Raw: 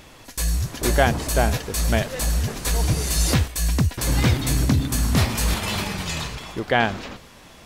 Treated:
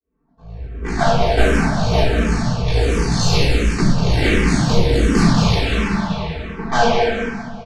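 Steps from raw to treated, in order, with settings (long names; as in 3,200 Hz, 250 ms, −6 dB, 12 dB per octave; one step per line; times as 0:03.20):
fade in at the beginning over 1.26 s
high-pass filter 47 Hz 6 dB per octave
low-pass that shuts in the quiet parts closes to 620 Hz, open at −16.5 dBFS
comb filter 4.5 ms, depth 99%
harmonic generator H 6 −9 dB, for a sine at −2.5 dBFS
high-frequency loss of the air 81 metres
repeating echo 196 ms, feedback 43%, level −6 dB
rectangular room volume 680 cubic metres, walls mixed, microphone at 3.6 metres
frequency shifter mixed with the dry sound −1.4 Hz
level −5.5 dB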